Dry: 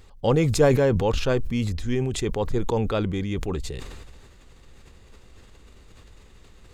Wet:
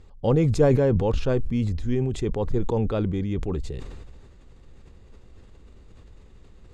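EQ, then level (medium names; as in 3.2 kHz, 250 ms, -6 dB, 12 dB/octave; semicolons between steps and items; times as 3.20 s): low-pass 9.2 kHz 12 dB/octave; tilt shelf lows +5 dB, about 860 Hz; -3.5 dB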